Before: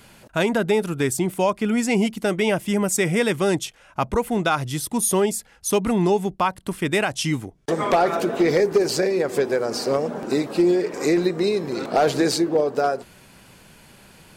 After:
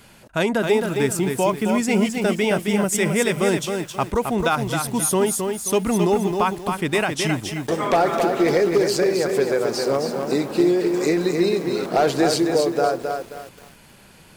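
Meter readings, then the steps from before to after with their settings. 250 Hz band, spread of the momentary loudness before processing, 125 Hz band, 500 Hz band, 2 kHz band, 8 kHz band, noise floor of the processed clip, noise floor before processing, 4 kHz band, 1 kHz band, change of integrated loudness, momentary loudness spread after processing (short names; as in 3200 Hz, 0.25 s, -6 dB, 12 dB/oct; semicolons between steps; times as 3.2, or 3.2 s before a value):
+1.0 dB, 6 LU, +1.0 dB, +1.0 dB, +1.0 dB, +1.0 dB, -49 dBFS, -52 dBFS, +1.0 dB, +1.0 dB, +1.0 dB, 5 LU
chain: lo-fi delay 0.266 s, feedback 35%, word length 7-bit, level -5 dB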